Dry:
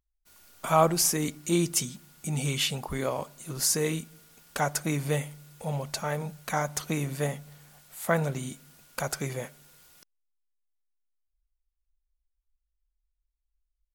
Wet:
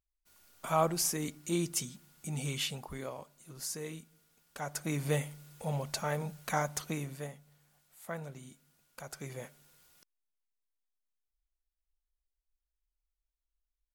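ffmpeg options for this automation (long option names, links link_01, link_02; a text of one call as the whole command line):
ffmpeg -i in.wav -af "volume=11dB,afade=type=out:start_time=2.6:duration=0.63:silence=0.473151,afade=type=in:start_time=4.59:duration=0.51:silence=0.298538,afade=type=out:start_time=6.58:duration=0.75:silence=0.251189,afade=type=in:start_time=9.05:duration=0.41:silence=0.421697" out.wav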